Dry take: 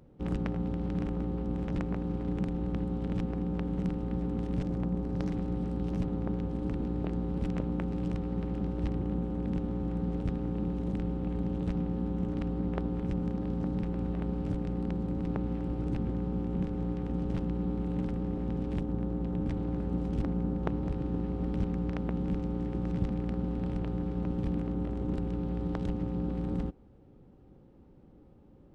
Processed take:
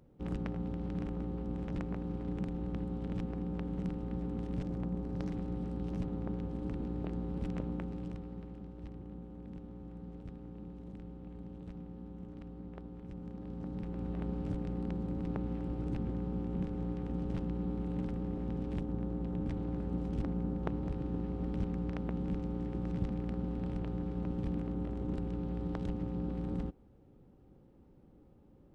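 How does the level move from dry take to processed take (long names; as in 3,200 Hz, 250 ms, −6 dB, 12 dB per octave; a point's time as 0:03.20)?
0:07.69 −5 dB
0:08.65 −14.5 dB
0:13.02 −14.5 dB
0:14.22 −4 dB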